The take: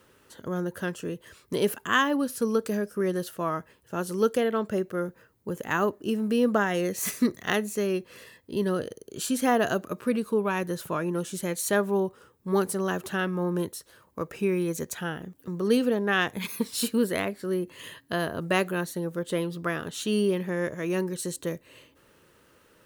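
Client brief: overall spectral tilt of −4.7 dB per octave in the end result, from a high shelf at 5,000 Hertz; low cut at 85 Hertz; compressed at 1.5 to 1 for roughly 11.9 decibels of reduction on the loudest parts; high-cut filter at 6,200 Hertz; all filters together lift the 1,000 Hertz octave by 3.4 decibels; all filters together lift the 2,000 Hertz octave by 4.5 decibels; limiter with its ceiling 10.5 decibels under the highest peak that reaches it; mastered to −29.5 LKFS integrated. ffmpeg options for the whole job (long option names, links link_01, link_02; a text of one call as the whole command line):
ffmpeg -i in.wav -af "highpass=85,lowpass=6200,equalizer=frequency=1000:width_type=o:gain=3,equalizer=frequency=2000:width_type=o:gain=4,highshelf=frequency=5000:gain=4.5,acompressor=threshold=-50dB:ratio=1.5,volume=9dB,alimiter=limit=-17dB:level=0:latency=1" out.wav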